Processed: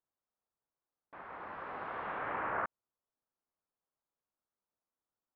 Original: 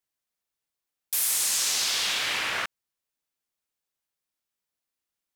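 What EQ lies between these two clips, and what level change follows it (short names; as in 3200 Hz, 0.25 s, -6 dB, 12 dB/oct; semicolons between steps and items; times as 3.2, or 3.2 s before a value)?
LPF 1300 Hz 24 dB/oct; air absorption 270 m; low shelf 390 Hz -5.5 dB; +3.0 dB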